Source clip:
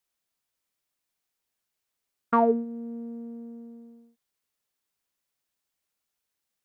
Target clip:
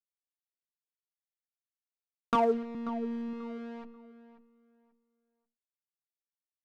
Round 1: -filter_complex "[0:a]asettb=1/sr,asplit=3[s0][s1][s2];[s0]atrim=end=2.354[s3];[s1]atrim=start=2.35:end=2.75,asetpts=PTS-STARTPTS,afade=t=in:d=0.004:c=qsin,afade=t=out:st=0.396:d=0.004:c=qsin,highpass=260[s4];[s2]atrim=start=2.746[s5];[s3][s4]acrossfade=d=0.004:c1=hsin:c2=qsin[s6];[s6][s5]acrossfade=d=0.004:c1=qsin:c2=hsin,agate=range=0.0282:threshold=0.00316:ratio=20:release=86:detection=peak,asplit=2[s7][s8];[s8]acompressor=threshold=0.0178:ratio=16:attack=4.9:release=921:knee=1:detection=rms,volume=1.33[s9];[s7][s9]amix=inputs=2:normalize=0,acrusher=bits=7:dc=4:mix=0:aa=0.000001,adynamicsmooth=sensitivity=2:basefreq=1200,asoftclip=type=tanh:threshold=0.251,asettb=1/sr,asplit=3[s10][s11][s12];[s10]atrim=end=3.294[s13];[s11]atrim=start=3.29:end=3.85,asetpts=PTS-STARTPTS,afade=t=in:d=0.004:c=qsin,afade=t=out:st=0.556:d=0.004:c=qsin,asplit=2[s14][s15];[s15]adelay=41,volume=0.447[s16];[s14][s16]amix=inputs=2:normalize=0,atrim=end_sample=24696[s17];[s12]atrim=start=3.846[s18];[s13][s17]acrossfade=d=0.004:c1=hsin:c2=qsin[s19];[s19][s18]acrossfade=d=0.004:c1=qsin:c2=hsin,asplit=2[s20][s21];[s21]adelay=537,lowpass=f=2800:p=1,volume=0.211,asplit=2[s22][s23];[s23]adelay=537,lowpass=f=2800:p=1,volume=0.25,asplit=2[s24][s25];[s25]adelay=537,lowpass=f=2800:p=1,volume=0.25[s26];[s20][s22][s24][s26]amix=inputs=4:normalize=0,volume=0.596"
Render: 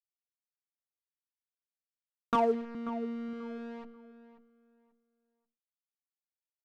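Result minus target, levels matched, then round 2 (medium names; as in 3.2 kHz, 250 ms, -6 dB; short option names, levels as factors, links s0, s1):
compression: peak gain reduction +7.5 dB
-filter_complex "[0:a]asettb=1/sr,asplit=3[s0][s1][s2];[s0]atrim=end=2.354[s3];[s1]atrim=start=2.35:end=2.75,asetpts=PTS-STARTPTS,afade=t=in:d=0.004:c=qsin,afade=t=out:st=0.396:d=0.004:c=qsin,highpass=260[s4];[s2]atrim=start=2.746[s5];[s3][s4]acrossfade=d=0.004:c1=hsin:c2=qsin[s6];[s6][s5]acrossfade=d=0.004:c1=qsin:c2=hsin,agate=range=0.0282:threshold=0.00316:ratio=20:release=86:detection=peak,asplit=2[s7][s8];[s8]acompressor=threshold=0.0447:ratio=16:attack=4.9:release=921:knee=1:detection=rms,volume=1.33[s9];[s7][s9]amix=inputs=2:normalize=0,acrusher=bits=7:dc=4:mix=0:aa=0.000001,adynamicsmooth=sensitivity=2:basefreq=1200,asoftclip=type=tanh:threshold=0.251,asettb=1/sr,asplit=3[s10][s11][s12];[s10]atrim=end=3.294[s13];[s11]atrim=start=3.29:end=3.85,asetpts=PTS-STARTPTS,afade=t=in:d=0.004:c=qsin,afade=t=out:st=0.556:d=0.004:c=qsin,asplit=2[s14][s15];[s15]adelay=41,volume=0.447[s16];[s14][s16]amix=inputs=2:normalize=0,atrim=end_sample=24696[s17];[s12]atrim=start=3.846[s18];[s13][s17]acrossfade=d=0.004:c1=hsin:c2=qsin[s19];[s19][s18]acrossfade=d=0.004:c1=qsin:c2=hsin,asplit=2[s20][s21];[s21]adelay=537,lowpass=f=2800:p=1,volume=0.211,asplit=2[s22][s23];[s23]adelay=537,lowpass=f=2800:p=1,volume=0.25,asplit=2[s24][s25];[s25]adelay=537,lowpass=f=2800:p=1,volume=0.25[s26];[s20][s22][s24][s26]amix=inputs=4:normalize=0,volume=0.596"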